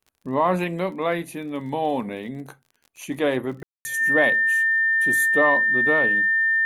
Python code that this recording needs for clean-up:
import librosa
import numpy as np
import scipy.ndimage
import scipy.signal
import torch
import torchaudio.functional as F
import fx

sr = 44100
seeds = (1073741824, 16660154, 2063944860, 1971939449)

y = fx.fix_declick_ar(x, sr, threshold=6.5)
y = fx.notch(y, sr, hz=1800.0, q=30.0)
y = fx.fix_ambience(y, sr, seeds[0], print_start_s=2.49, print_end_s=2.99, start_s=3.63, end_s=3.85)